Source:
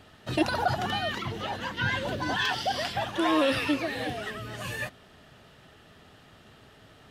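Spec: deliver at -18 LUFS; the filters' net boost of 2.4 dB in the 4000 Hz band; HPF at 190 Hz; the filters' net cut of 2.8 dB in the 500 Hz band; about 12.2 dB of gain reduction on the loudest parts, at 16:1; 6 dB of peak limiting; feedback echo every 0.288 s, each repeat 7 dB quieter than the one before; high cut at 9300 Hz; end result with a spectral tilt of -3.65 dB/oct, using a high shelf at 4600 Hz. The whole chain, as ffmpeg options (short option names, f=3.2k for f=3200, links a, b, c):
-af "highpass=190,lowpass=9.3k,equalizer=f=500:t=o:g=-3.5,equalizer=f=4k:t=o:g=7,highshelf=f=4.6k:g=-8,acompressor=threshold=-33dB:ratio=16,alimiter=level_in=5dB:limit=-24dB:level=0:latency=1,volume=-5dB,aecho=1:1:288|576|864|1152|1440:0.447|0.201|0.0905|0.0407|0.0183,volume=19dB"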